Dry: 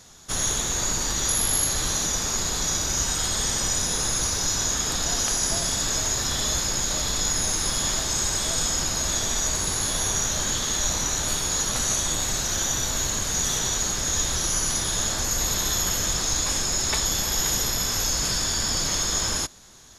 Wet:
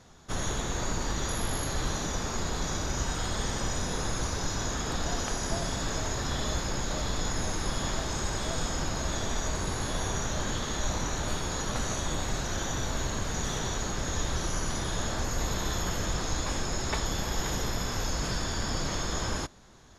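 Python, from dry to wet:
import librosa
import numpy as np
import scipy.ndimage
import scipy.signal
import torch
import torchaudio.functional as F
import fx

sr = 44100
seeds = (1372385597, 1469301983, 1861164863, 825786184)

y = fx.lowpass(x, sr, hz=1400.0, slope=6)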